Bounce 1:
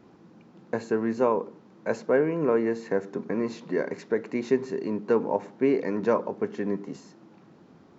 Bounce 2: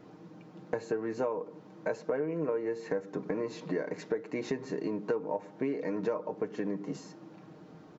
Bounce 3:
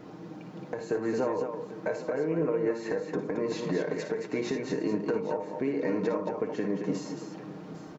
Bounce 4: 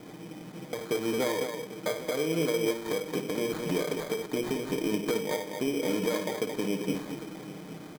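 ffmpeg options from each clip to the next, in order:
-af "equalizer=f=580:t=o:w=0.77:g=3.5,aecho=1:1:6.5:0.59,acompressor=threshold=-30dB:ratio=5"
-af "alimiter=level_in=2.5dB:limit=-24dB:level=0:latency=1:release=272,volume=-2.5dB,aecho=1:1:56|78|222|804:0.355|0.2|0.473|0.168,volume=6.5dB"
-af "acrusher=samples=16:mix=1:aa=0.000001"

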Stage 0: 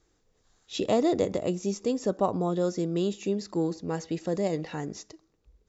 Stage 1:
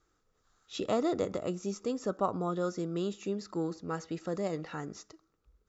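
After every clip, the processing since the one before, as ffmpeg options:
-af "equalizer=f=1.3k:t=o:w=0.4:g=13.5,volume=-6dB"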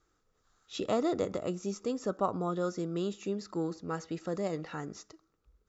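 -af anull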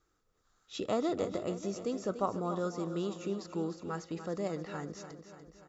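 -af "aecho=1:1:291|582|873|1164|1455|1746|2037:0.282|0.163|0.0948|0.055|0.0319|0.0185|0.0107,volume=-2dB"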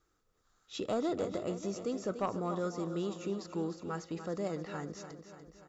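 -af "asoftclip=type=tanh:threshold=-23dB"

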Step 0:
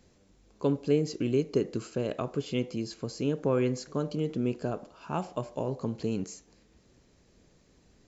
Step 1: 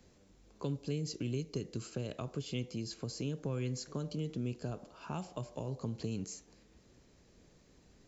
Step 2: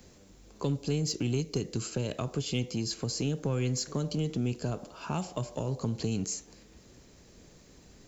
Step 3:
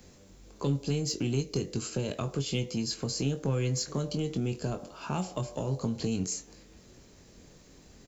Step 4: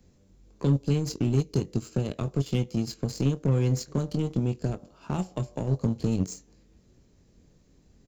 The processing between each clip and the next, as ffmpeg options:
-filter_complex "[0:a]acrossover=split=160|3000[a][b][c];[b]acompressor=threshold=-39dB:ratio=5[d];[a][d][c]amix=inputs=3:normalize=0,volume=-1dB"
-filter_complex "[0:a]highshelf=f=6.5k:g=7.5,asplit=2[a][b];[b]asoftclip=type=hard:threshold=-35dB,volume=-8dB[c];[a][c]amix=inputs=2:normalize=0,volume=4.5dB"
-filter_complex "[0:a]asplit=2[a][b];[b]adelay=22,volume=-8dB[c];[a][c]amix=inputs=2:normalize=0"
-af "aeval=exprs='0.133*(cos(1*acos(clip(val(0)/0.133,-1,1)))-cos(1*PI/2))+0.0133*(cos(7*acos(clip(val(0)/0.133,-1,1)))-cos(7*PI/2))':c=same,lowshelf=f=380:g=11,volume=-2.5dB"

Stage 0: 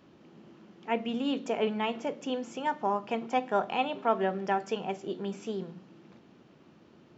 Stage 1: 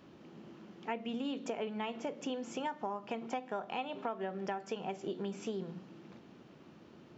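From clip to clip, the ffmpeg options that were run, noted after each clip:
-af "acompressor=threshold=-35dB:ratio=10,volume=1dB"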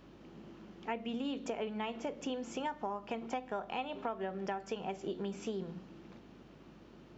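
-af "aeval=exprs='val(0)+0.000562*(sin(2*PI*50*n/s)+sin(2*PI*2*50*n/s)/2+sin(2*PI*3*50*n/s)/3+sin(2*PI*4*50*n/s)/4+sin(2*PI*5*50*n/s)/5)':c=same"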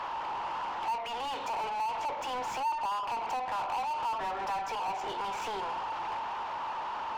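-filter_complex "[0:a]highpass=f=910:t=q:w=9.3,acompressor=threshold=-45dB:ratio=1.5,asplit=2[a][b];[b]highpass=f=720:p=1,volume=34dB,asoftclip=type=tanh:threshold=-26dB[c];[a][c]amix=inputs=2:normalize=0,lowpass=f=1.7k:p=1,volume=-6dB"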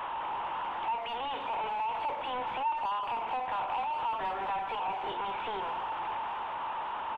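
-filter_complex "[0:a]aresample=8000,aresample=44100,asplit=2[a][b];[b]adelay=200,highpass=300,lowpass=3.4k,asoftclip=type=hard:threshold=-32.5dB,volume=-13dB[c];[a][c]amix=inputs=2:normalize=0"

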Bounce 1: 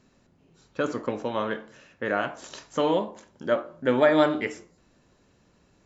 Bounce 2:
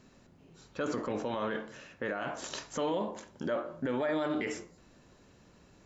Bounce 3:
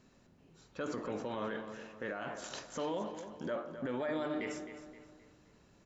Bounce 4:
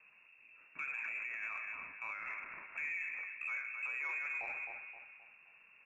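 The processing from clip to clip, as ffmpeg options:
-af "acompressor=threshold=-25dB:ratio=6,alimiter=level_in=2.5dB:limit=-24dB:level=0:latency=1:release=21,volume=-2.5dB,volume=2.5dB"
-filter_complex "[0:a]asplit=2[a][b];[b]adelay=262,lowpass=f=4.9k:p=1,volume=-10dB,asplit=2[c][d];[d]adelay=262,lowpass=f=4.9k:p=1,volume=0.42,asplit=2[e][f];[f]adelay=262,lowpass=f=4.9k:p=1,volume=0.42,asplit=2[g][h];[h]adelay=262,lowpass=f=4.9k:p=1,volume=0.42[i];[a][c][e][g][i]amix=inputs=5:normalize=0,volume=-5dB"
-af "alimiter=level_in=10.5dB:limit=-24dB:level=0:latency=1:release=59,volume=-10.5dB,lowpass=f=2.4k:t=q:w=0.5098,lowpass=f=2.4k:t=q:w=0.6013,lowpass=f=2.4k:t=q:w=0.9,lowpass=f=2.4k:t=q:w=2.563,afreqshift=-2800,aeval=exprs='0.0266*(cos(1*acos(clip(val(0)/0.0266,-1,1)))-cos(1*PI/2))+0.00106*(cos(3*acos(clip(val(0)/0.0266,-1,1)))-cos(3*PI/2))':c=same,volume=2.5dB"

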